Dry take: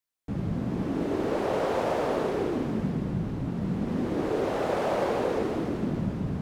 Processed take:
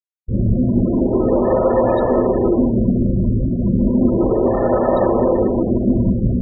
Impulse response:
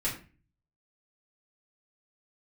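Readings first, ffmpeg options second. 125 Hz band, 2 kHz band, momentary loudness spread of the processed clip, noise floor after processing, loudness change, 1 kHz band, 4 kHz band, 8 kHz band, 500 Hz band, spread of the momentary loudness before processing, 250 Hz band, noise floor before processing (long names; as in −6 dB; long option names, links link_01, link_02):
+12.5 dB, 0.0 dB, 3 LU, −21 dBFS, +12.0 dB, +8.0 dB, can't be measured, below −30 dB, +11.5 dB, 4 LU, +13.5 dB, −33 dBFS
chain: -filter_complex "[1:a]atrim=start_sample=2205,atrim=end_sample=4410,asetrate=88200,aresample=44100[link_01];[0:a][link_01]afir=irnorm=-1:irlink=0,afftfilt=real='re*gte(hypot(re,im),0.0355)':imag='im*gte(hypot(re,im),0.0355)':win_size=1024:overlap=0.75,crystalizer=i=3:c=0,volume=9dB"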